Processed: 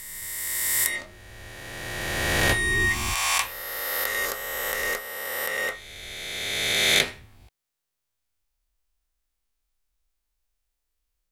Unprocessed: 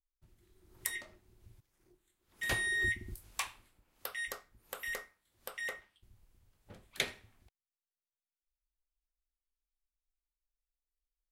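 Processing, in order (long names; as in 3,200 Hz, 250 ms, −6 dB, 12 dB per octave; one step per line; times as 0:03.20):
peak hold with a rise ahead of every peak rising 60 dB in 2.59 s
level +8.5 dB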